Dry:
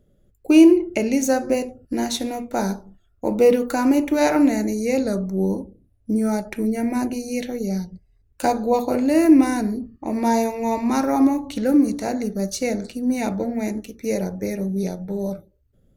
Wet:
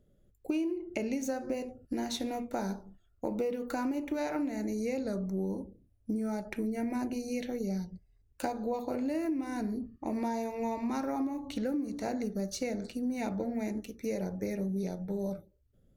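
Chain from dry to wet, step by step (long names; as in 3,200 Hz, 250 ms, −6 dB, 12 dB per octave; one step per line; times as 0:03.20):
dynamic equaliser 9,900 Hz, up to −6 dB, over −49 dBFS, Q 0.73
downward compressor 10 to 1, threshold −23 dBFS, peak gain reduction 16 dB
level −6.5 dB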